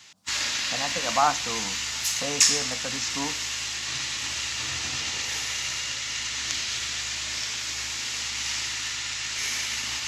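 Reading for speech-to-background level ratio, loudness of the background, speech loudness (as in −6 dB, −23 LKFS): −4.0 dB, −26.5 LKFS, −30.5 LKFS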